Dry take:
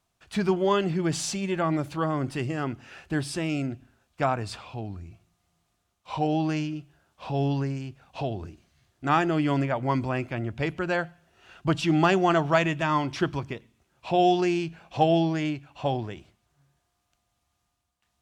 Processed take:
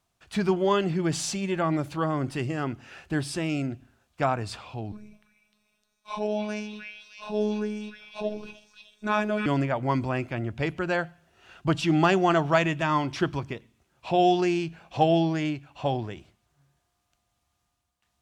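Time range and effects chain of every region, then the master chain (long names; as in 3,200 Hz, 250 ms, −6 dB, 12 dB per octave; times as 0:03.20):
0:04.92–0:09.46: EQ curve with evenly spaced ripples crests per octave 1.6, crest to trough 10 dB + phases set to zero 211 Hz + echo through a band-pass that steps 305 ms, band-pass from 2,200 Hz, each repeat 0.7 octaves, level −0.5 dB
whole clip: no processing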